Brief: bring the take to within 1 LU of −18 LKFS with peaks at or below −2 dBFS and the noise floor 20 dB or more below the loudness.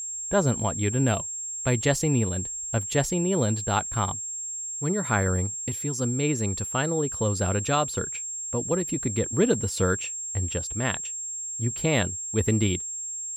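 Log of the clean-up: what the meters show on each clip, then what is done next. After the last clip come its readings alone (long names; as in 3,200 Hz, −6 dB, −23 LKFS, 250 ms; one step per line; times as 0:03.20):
interfering tone 7,500 Hz; level of the tone −31 dBFS; integrated loudness −26.0 LKFS; sample peak −9.0 dBFS; target loudness −18.0 LKFS
→ notch filter 7,500 Hz, Q 30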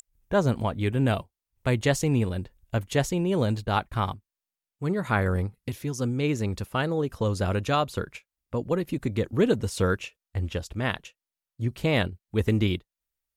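interfering tone none found; integrated loudness −27.5 LKFS; sample peak −9.5 dBFS; target loudness −18.0 LKFS
→ level +9.5 dB
brickwall limiter −2 dBFS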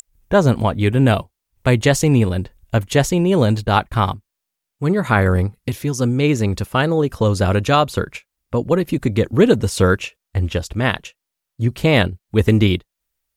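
integrated loudness −18.0 LKFS; sample peak −2.0 dBFS; background noise floor −81 dBFS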